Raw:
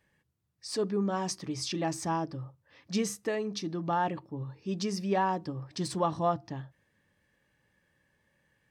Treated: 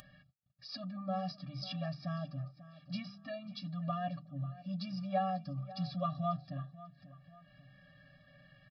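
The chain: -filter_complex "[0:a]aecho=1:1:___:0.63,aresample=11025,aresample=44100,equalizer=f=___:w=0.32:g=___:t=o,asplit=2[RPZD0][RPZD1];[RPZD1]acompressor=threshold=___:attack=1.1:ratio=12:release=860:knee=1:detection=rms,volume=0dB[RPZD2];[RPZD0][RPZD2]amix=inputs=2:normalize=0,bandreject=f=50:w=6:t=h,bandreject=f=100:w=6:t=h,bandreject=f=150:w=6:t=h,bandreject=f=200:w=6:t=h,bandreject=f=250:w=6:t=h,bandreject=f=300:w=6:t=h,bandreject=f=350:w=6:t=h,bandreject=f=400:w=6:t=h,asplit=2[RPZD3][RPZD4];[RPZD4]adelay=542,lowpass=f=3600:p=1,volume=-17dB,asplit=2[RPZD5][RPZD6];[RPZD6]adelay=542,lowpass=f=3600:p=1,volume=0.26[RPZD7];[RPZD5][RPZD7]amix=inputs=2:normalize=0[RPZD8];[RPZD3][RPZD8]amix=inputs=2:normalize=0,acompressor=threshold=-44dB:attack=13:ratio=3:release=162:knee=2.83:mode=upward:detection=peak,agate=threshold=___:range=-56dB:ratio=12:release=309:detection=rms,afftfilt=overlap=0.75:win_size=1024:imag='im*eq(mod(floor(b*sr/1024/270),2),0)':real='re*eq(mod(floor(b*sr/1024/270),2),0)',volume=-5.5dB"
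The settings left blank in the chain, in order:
6.7, 2000, -12, -42dB, -51dB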